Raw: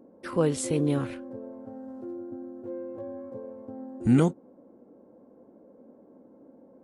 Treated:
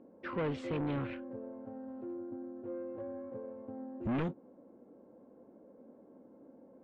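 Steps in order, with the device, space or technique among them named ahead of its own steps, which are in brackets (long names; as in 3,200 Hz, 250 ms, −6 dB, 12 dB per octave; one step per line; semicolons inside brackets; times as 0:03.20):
overdriven synthesiser ladder filter (soft clipping −26.5 dBFS, distortion −6 dB; transistor ladder low-pass 3,400 Hz, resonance 30%)
level +3 dB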